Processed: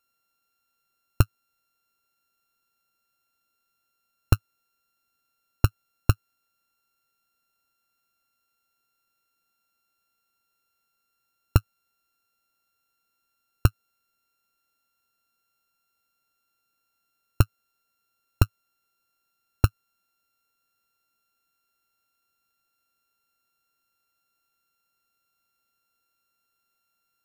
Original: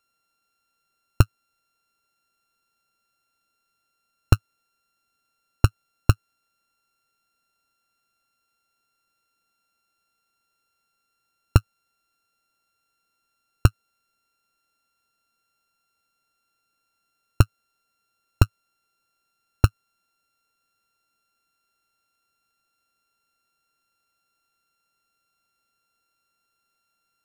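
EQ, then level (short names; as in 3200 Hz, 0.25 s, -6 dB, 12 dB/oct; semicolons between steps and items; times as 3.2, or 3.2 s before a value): bell 15000 Hz +14 dB 0.27 oct; -3.0 dB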